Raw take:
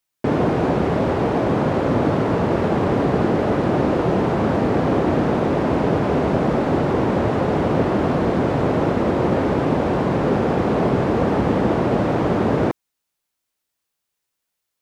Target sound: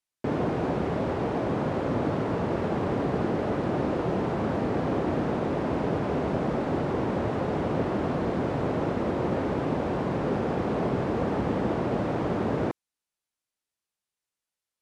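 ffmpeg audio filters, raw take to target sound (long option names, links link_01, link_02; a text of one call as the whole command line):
ffmpeg -i in.wav -af "lowpass=frequency=12000:width=0.5412,lowpass=frequency=12000:width=1.3066,volume=-8.5dB" out.wav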